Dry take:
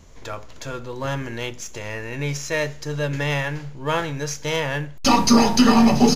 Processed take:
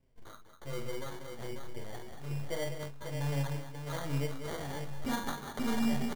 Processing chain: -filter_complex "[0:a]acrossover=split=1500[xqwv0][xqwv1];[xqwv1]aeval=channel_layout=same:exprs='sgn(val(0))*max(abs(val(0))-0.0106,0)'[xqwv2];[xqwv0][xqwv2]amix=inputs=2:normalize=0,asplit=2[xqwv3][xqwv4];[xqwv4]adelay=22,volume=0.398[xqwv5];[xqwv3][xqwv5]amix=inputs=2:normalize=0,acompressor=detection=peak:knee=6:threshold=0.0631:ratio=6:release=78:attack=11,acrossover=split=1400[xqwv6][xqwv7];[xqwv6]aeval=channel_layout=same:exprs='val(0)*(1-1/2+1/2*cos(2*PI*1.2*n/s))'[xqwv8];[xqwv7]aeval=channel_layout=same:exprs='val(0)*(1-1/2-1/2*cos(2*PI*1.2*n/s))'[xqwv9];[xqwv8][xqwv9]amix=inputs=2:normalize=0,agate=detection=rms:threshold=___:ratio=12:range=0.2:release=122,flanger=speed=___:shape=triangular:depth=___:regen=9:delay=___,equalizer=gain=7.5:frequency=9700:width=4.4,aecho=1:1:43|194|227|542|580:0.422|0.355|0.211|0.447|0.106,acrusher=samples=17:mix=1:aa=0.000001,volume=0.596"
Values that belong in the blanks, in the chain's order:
0.00891, 0.6, 7.1, 7.2